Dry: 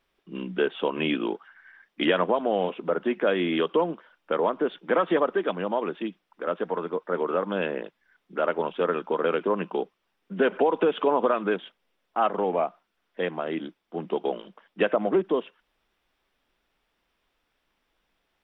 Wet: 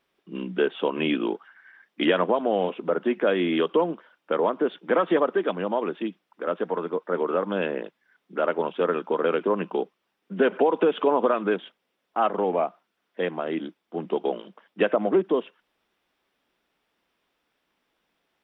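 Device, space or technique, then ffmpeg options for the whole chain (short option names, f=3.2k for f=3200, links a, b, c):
filter by subtraction: -filter_complex "[0:a]asplit=2[a][b];[b]lowpass=230,volume=-1[c];[a][c]amix=inputs=2:normalize=0"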